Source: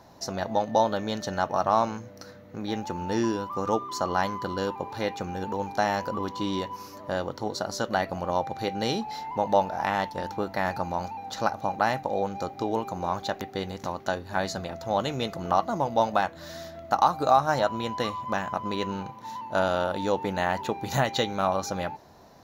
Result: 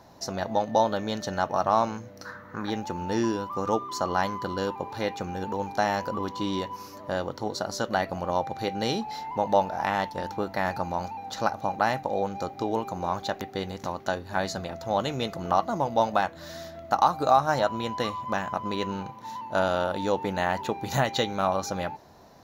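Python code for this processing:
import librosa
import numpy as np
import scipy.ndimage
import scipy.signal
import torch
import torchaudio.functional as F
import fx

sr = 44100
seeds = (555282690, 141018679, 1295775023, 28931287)

y = fx.band_shelf(x, sr, hz=1300.0, db=15.0, octaves=1.2, at=(2.25, 2.7))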